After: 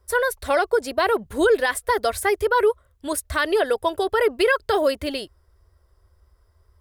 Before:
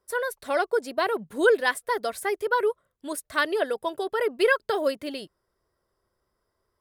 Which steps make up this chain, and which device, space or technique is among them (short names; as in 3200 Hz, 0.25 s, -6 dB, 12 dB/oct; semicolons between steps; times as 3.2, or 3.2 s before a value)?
car stereo with a boomy subwoofer (resonant low shelf 110 Hz +13.5 dB, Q 3; limiter -18 dBFS, peak gain reduction 9.5 dB); gain +7.5 dB